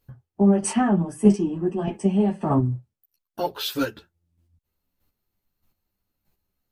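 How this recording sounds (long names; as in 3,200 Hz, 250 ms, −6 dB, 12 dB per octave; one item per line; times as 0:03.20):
chopped level 1.6 Hz, depth 60%, duty 15%
a shimmering, thickened sound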